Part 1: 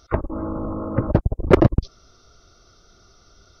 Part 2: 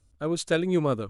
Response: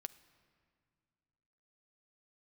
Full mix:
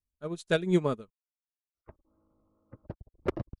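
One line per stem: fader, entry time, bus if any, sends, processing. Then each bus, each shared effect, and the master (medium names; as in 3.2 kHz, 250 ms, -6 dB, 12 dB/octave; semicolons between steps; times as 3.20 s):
-16.5 dB, 1.75 s, no send, upward expansion 2.5:1, over -26 dBFS
+2.0 dB, 0.00 s, no send, peaking EQ 1.3 kHz -2 dB 2.8 oct; comb 4.8 ms, depth 39%; upward expansion 2.5:1, over -40 dBFS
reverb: none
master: none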